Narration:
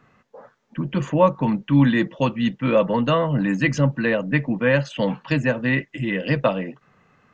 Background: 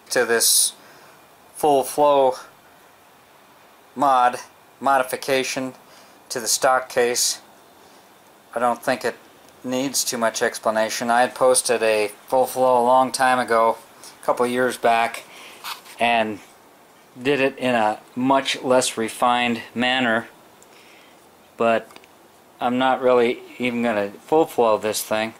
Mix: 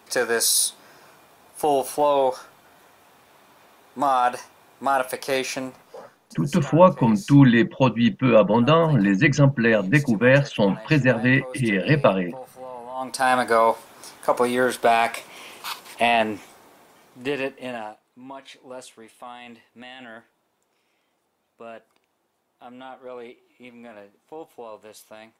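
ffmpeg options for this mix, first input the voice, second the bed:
-filter_complex "[0:a]adelay=5600,volume=2.5dB[a];[1:a]volume=16.5dB,afade=t=out:st=5.59:d=0.77:silence=0.141254,afade=t=in:st=12.94:d=0.41:silence=0.1,afade=t=out:st=16.47:d=1.53:silence=0.0891251[b];[a][b]amix=inputs=2:normalize=0"

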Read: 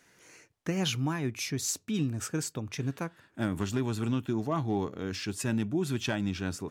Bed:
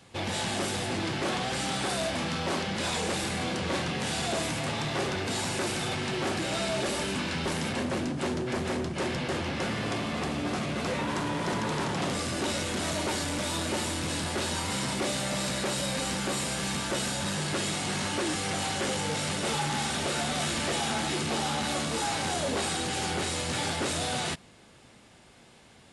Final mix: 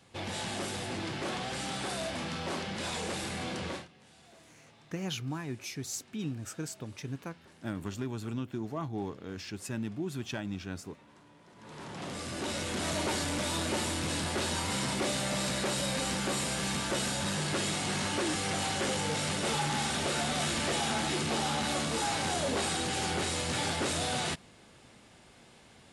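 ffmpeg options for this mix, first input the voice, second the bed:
-filter_complex "[0:a]adelay=4250,volume=-6dB[a];[1:a]volume=21dB,afade=t=out:st=3.66:d=0.22:silence=0.0749894,afade=t=in:st=11.55:d=1.44:silence=0.0473151[b];[a][b]amix=inputs=2:normalize=0"

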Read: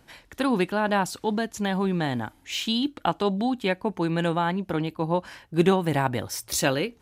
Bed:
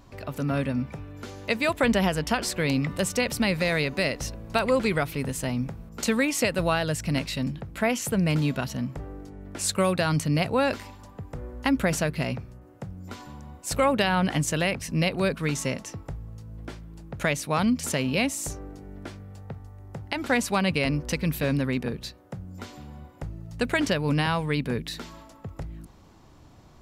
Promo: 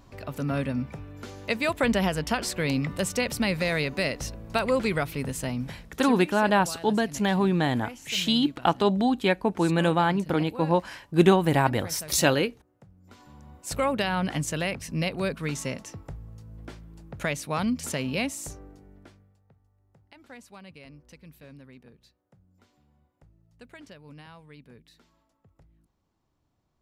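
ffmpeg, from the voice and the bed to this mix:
-filter_complex "[0:a]adelay=5600,volume=2dB[a];[1:a]volume=11.5dB,afade=t=out:st=5.44:d=0.81:silence=0.177828,afade=t=in:st=13.01:d=0.64:silence=0.223872,afade=t=out:st=18.21:d=1.17:silence=0.105925[b];[a][b]amix=inputs=2:normalize=0"

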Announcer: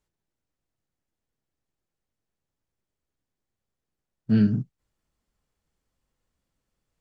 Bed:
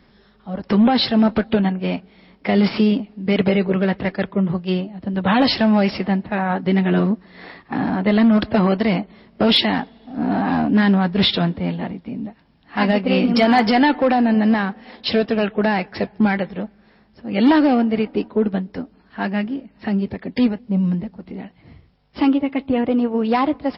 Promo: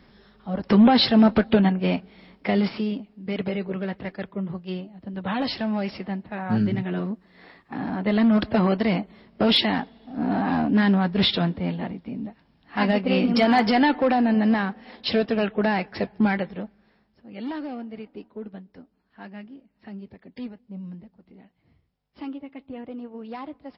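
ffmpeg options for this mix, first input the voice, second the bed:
-filter_complex "[0:a]adelay=2200,volume=-3dB[a];[1:a]volume=6dB,afade=t=out:st=2.25:d=0.51:silence=0.316228,afade=t=in:st=7.66:d=0.69:silence=0.473151,afade=t=out:st=16.33:d=1.02:silence=0.199526[b];[a][b]amix=inputs=2:normalize=0"

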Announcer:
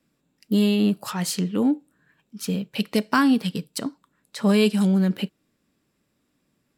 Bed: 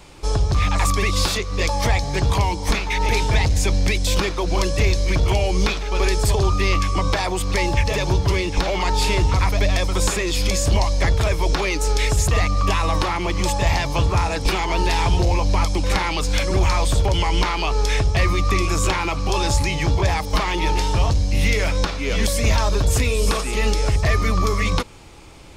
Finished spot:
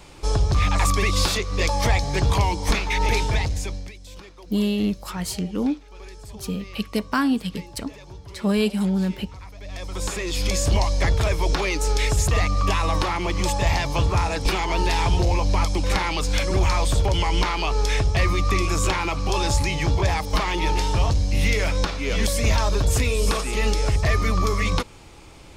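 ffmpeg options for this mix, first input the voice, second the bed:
-filter_complex "[0:a]adelay=4000,volume=-2.5dB[a];[1:a]volume=19dB,afade=t=out:st=3.05:d=0.87:silence=0.0891251,afade=t=in:st=9.61:d=0.98:silence=0.1[b];[a][b]amix=inputs=2:normalize=0"

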